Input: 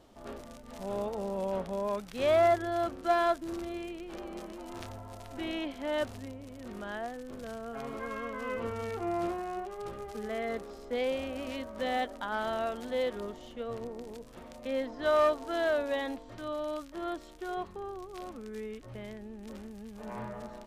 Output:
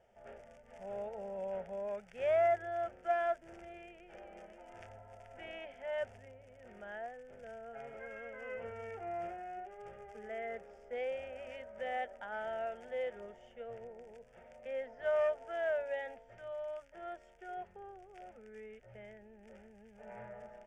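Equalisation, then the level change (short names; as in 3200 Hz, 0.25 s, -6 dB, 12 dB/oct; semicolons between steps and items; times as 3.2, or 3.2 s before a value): air absorption 98 m; low shelf 150 Hz -10 dB; fixed phaser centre 1100 Hz, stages 6; -4.0 dB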